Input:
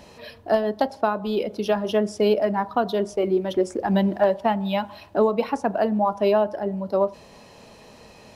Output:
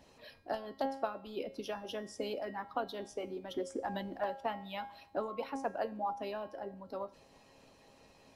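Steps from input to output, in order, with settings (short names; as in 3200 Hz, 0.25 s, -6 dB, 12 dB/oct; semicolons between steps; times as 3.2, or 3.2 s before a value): resonator 270 Hz, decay 0.57 s, harmonics all, mix 90%; harmonic-percussive split harmonic -11 dB; gain +7 dB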